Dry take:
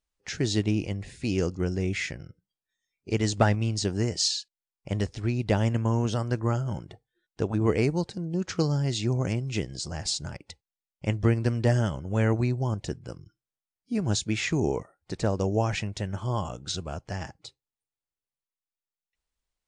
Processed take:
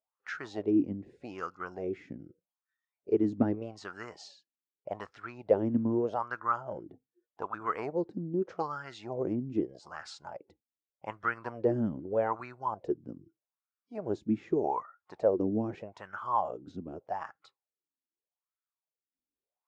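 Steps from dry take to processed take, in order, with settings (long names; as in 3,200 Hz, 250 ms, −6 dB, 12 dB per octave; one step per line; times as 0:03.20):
LFO wah 0.82 Hz 250–1,400 Hz, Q 5.6
dynamic equaliser 1,200 Hz, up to +4 dB, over −56 dBFS, Q 1.3
level +8 dB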